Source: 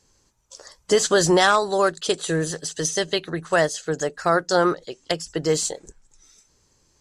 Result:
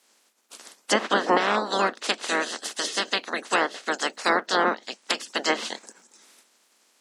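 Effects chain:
ceiling on every frequency bin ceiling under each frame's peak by 28 dB
treble cut that deepens with the level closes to 1,700 Hz, closed at −15 dBFS
surface crackle 150 per second −56 dBFS
elliptic high-pass filter 210 Hz, stop band 40 dB

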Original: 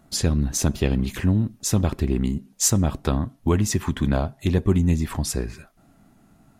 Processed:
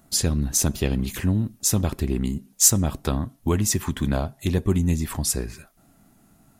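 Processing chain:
high-shelf EQ 6,600 Hz +12 dB
level −2 dB

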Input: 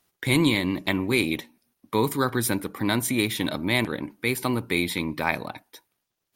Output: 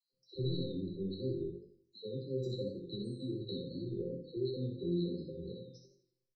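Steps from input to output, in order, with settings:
rippled gain that drifts along the octave scale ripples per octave 1, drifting +2 Hz, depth 13 dB
high-frequency loss of the air 230 metres
all-pass dispersion lows, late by 127 ms, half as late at 800 Hz
downward compressor, threshold −23 dBFS, peak gain reduction 7.5 dB
parametric band 240 Hz −9.5 dB 1.6 octaves
gate on every frequency bin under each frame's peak −25 dB strong
linear-phase brick-wall band-stop 540–3,900 Hz
resonators tuned to a chord C3 sus4, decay 0.34 s
repeating echo 63 ms, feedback 31%, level −5 dB
feedback echo with a swinging delay time 84 ms, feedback 42%, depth 93 cents, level −12 dB
level +11 dB

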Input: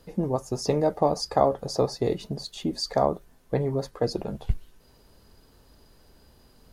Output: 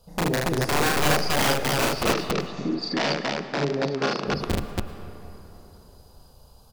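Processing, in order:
phaser swept by the level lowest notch 310 Hz, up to 1,400 Hz, full sweep at −25.5 dBFS
wrap-around overflow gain 19 dB
0:02.03–0:04.25: elliptic band-pass filter 170–5,400 Hz, stop band 40 dB
on a send: loudspeakers that aren't time-aligned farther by 12 metres −1 dB, 26 metres −2 dB, 96 metres 0 dB
on the sum: comb and all-pass reverb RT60 3.7 s, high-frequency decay 0.45×, pre-delay 65 ms, DRR 11 dB

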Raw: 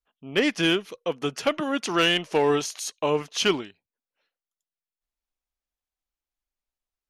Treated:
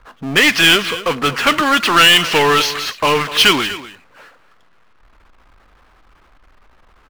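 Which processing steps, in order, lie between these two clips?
flat-topped bell 2,400 Hz +13 dB 2.7 octaves
low-pass that shuts in the quiet parts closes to 840 Hz, open at −9 dBFS
power curve on the samples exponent 0.5
on a send: single-tap delay 244 ms −15.5 dB
on the sum: level −3.5 dB

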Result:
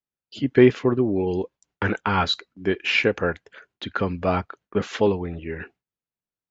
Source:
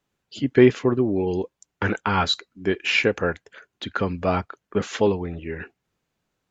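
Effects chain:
noise gate with hold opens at −43 dBFS
low-pass filter 5,400 Hz 12 dB per octave

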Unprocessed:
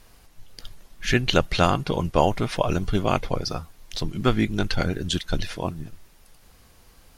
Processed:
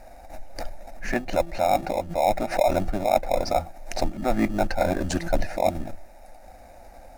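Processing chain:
flat-topped bell 670 Hz +14.5 dB 1.2 octaves
hum removal 169.2 Hz, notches 2
reversed playback
downward compressor 12 to 1, threshold −21 dBFS, peak gain reduction 21 dB
reversed playback
high-shelf EQ 7,100 Hz −10.5 dB
phaser with its sweep stopped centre 680 Hz, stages 8
in parallel at −9 dB: decimation without filtering 29×
on the sum: background raised ahead of every attack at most 120 dB per second
level +4 dB

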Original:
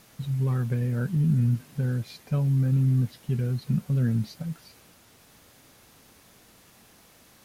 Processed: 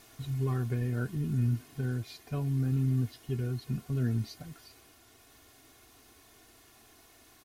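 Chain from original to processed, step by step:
comb filter 2.8 ms, depth 76%
speech leveller within 3 dB 2 s
level −4.5 dB

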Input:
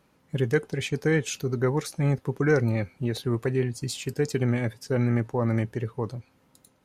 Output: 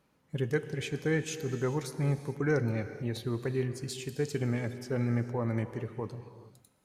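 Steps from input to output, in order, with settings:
reverb whose tail is shaped and stops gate 470 ms flat, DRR 10 dB
level −6.5 dB

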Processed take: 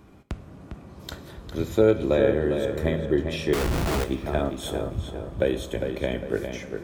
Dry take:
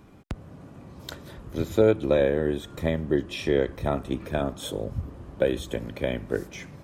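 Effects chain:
feedback echo with a low-pass in the loop 404 ms, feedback 43%, low-pass 4,100 Hz, level −6.5 dB
0:03.53–0:04.04: comparator with hysteresis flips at −33 dBFS
coupled-rooms reverb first 0.54 s, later 4 s, from −17 dB, DRR 10.5 dB

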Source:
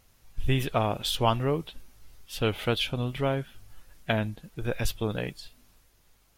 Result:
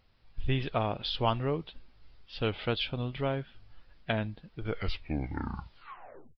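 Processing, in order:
turntable brake at the end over 1.83 s
downsampling to 11,025 Hz
level −4 dB

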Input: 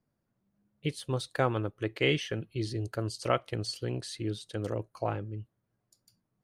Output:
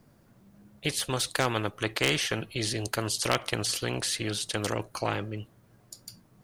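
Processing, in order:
gain into a clipping stage and back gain 15 dB
every bin compressed towards the loudest bin 2 to 1
level +8 dB

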